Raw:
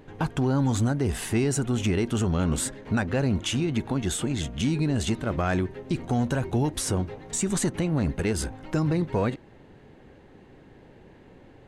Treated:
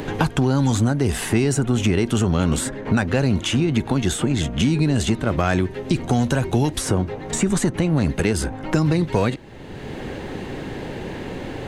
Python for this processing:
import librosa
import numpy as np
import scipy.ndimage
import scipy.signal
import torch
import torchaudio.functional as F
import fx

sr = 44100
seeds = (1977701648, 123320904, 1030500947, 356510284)

y = fx.band_squash(x, sr, depth_pct=70)
y = y * 10.0 ** (5.5 / 20.0)